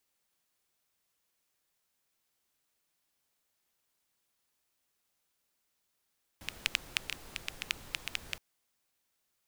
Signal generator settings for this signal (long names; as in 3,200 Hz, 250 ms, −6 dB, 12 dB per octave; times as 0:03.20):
rain-like ticks over hiss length 1.97 s, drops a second 7.1, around 2,600 Hz, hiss −10 dB